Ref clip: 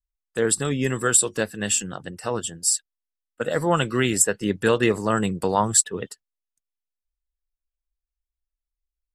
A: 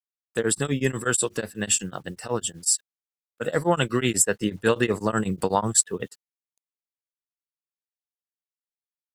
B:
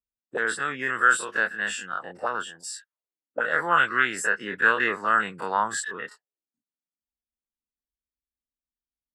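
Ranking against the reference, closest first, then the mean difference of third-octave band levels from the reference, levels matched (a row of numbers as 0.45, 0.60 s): A, B; 3.0, 7.5 dB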